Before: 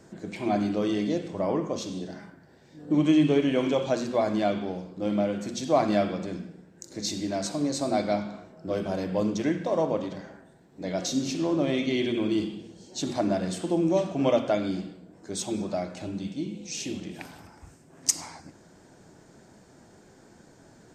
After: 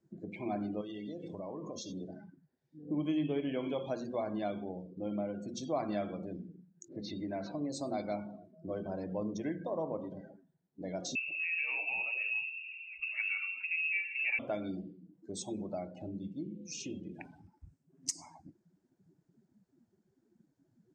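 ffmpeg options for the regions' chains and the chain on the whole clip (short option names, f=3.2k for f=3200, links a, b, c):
-filter_complex "[0:a]asettb=1/sr,asplit=3[a][b][c];[a]atrim=end=0.814[d];[b]atrim=start=0.81:end=1.92,asetpts=PTS-STARTPTS,afade=t=in:d=0.004:c=qsin,afade=t=out:st=1.106:d=0.004:c=qsin,highshelf=f=2.2k:g=10,acompressor=threshold=-31dB:ratio=6:attack=3.2:release=140:knee=1:detection=peak[e];[c]atrim=start=1.916[f];[d][e]acrossfade=d=0.004:c1=hsin:c2=qsin[g];[g][f]acrossfade=d=0.004:c1=qsin:c2=hsin,asettb=1/sr,asplit=3[h][i][j];[h]atrim=end=6.884[k];[i]atrim=start=6.88:end=7.7,asetpts=PTS-STARTPTS,afade=t=in:d=0.004:c=qsin,afade=t=out:st=0.816:d=0.004:c=qsin,aeval=exprs='val(0)+0.5*0.00631*sgn(val(0))':c=same,lowpass=2.4k,adynamicequalizer=threshold=0.00447:dfrequency=1600:dqfactor=0.7:tfrequency=1600:tqfactor=0.7:attack=5:release=100:ratio=0.375:range=3:mode=boostabove:tftype=highshelf[l];[j]atrim=start=7.696[m];[k][l]acrossfade=d=0.004:c1=hsin:c2=qsin[n];[n][m]acrossfade=d=0.004:c1=qsin:c2=hsin,asettb=1/sr,asplit=3[o][p][q];[o]atrim=end=11.154[r];[p]atrim=start=11.15:end=14.39,asetpts=PTS-STARTPTS,afade=t=in:d=0.004:c=qsin,afade=t=out:st=3.236:d=0.004:c=qsin,aeval=exprs='val(0)+0.5*0.0126*sgn(val(0))':c=same,lowpass=f=2.5k:t=q:w=0.5098,lowpass=f=2.5k:t=q:w=0.6013,lowpass=f=2.5k:t=q:w=0.9,lowpass=f=2.5k:t=q:w=2.563,afreqshift=-2900[s];[q]atrim=start=14.386[t];[r][s]acrossfade=d=0.004:c1=hsin:c2=qsin[u];[u][t]acrossfade=d=0.004:c1=qsin:c2=hsin,afftdn=nr=26:nf=-39,acompressor=threshold=-40dB:ratio=1.5,lowpass=9.4k,volume=-4dB"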